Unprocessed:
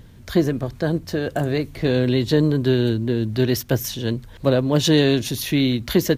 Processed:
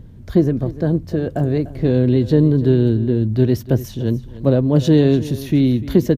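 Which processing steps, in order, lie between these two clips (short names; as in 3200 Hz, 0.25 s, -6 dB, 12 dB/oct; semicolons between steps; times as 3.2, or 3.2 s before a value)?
tilt shelf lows +8 dB, about 790 Hz; on a send: echo 0.295 s -16.5 dB; on the sum: gain -2 dB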